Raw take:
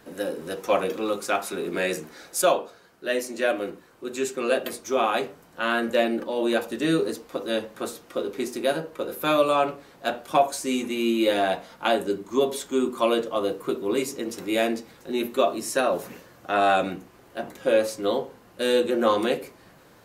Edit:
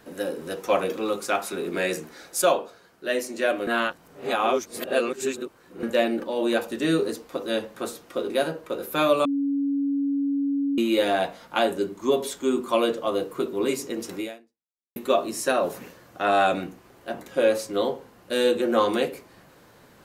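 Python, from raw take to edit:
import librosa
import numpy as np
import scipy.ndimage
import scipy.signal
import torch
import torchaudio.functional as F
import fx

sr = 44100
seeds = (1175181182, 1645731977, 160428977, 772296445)

y = fx.edit(x, sr, fx.reverse_span(start_s=3.67, length_s=2.16),
    fx.cut(start_s=8.3, length_s=0.29),
    fx.bleep(start_s=9.54, length_s=1.53, hz=280.0, db=-21.5),
    fx.fade_out_span(start_s=14.48, length_s=0.77, curve='exp'), tone=tone)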